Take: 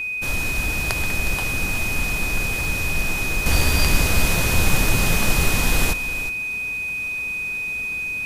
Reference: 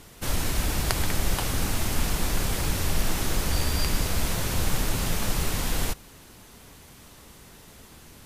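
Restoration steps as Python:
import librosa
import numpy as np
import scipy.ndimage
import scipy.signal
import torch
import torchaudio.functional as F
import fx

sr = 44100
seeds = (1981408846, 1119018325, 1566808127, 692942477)

y = fx.notch(x, sr, hz=2500.0, q=30.0)
y = fx.fix_echo_inverse(y, sr, delay_ms=363, level_db=-12.0)
y = fx.gain(y, sr, db=fx.steps((0.0, 0.0), (3.46, -6.5)))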